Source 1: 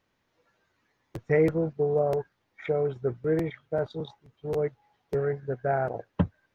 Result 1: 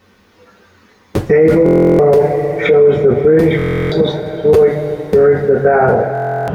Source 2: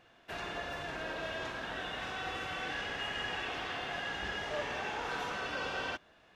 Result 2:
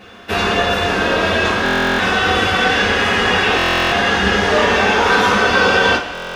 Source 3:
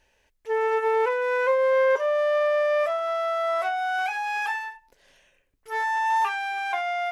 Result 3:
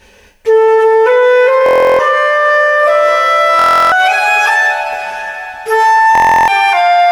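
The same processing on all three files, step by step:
two-slope reverb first 0.26 s, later 4.6 s, from -22 dB, DRR -5 dB; stuck buffer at 1.64/3.57/6.13, samples 1024, times 14; maximiser +19 dB; gain -1.5 dB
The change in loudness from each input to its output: +17.0, +23.0, +15.5 LU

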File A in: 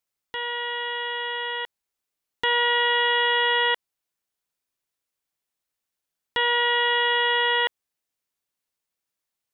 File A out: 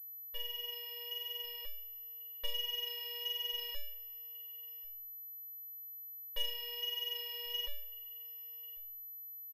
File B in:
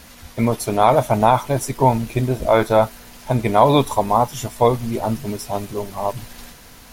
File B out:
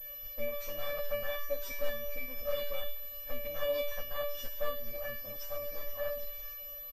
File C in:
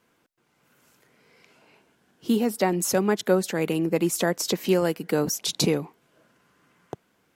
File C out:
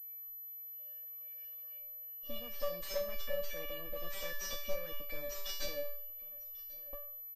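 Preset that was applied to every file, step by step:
minimum comb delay 3.8 ms; dynamic EQ 580 Hz, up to -5 dB, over -27 dBFS, Q 0.72; compressor 3:1, threshold -26 dBFS; flange 1.4 Hz, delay 6.1 ms, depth 2.6 ms, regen -44%; resonator 580 Hz, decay 0.53 s, mix 100%; echo 1.093 s -21.5 dB; pulse-width modulation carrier 12000 Hz; gain +16.5 dB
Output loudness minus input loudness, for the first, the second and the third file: -18.0, -19.0, -17.5 LU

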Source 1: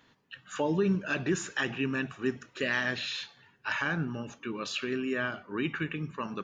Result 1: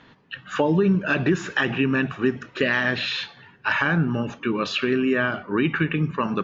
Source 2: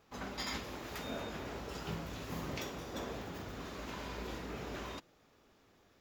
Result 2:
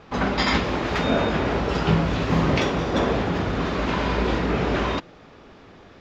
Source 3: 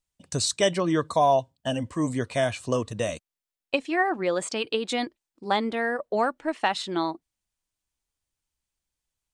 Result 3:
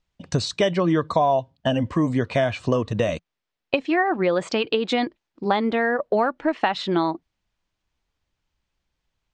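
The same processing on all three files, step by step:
bell 170 Hz +3 dB 0.24 oct; compressor 3:1, threshold -30 dBFS; air absorption 170 m; match loudness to -23 LUFS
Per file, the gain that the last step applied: +13.0, +20.5, +11.0 dB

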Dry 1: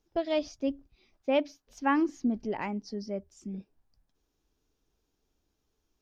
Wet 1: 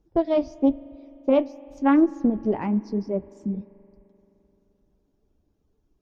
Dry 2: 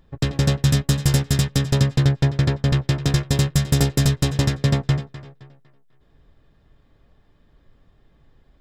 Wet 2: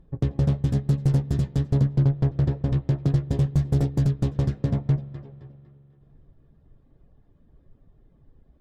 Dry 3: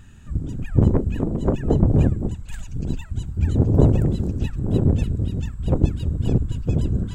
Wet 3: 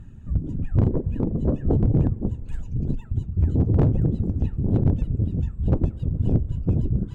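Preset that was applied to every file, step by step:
reverb removal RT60 0.64 s; tilt shelf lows +9.5 dB; in parallel at +1.5 dB: compressor 10:1, threshold -18 dBFS; on the sum: tube stage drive -2 dB, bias 0.35; flange 1 Hz, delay 5.5 ms, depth 8.3 ms, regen -56%; hard clip -6 dBFS; spring tank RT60 3.3 s, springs 43 ms, chirp 65 ms, DRR 19 dB; Doppler distortion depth 0.18 ms; match loudness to -24 LUFS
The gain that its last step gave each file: +1.5, -8.0, -5.5 dB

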